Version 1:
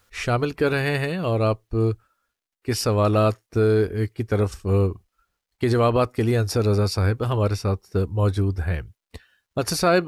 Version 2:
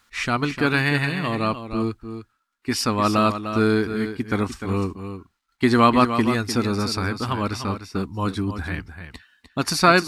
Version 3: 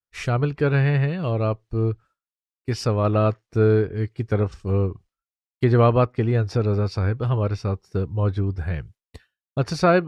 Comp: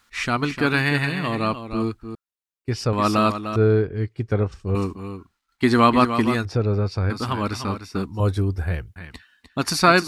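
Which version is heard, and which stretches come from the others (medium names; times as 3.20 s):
2
2.15–2.93 s: from 3
3.56–4.75 s: from 3
6.45–7.10 s: from 3
8.20–8.96 s: from 1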